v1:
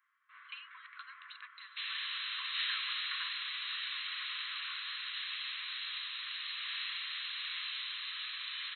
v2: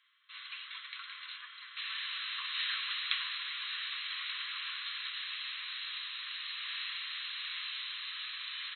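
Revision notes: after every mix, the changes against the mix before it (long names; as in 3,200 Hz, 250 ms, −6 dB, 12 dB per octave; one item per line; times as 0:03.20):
first sound: remove low-pass filter 1,700 Hz 24 dB per octave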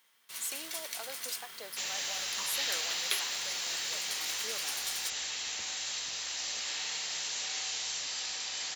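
master: remove linear-phase brick-wall band-pass 1,000–4,200 Hz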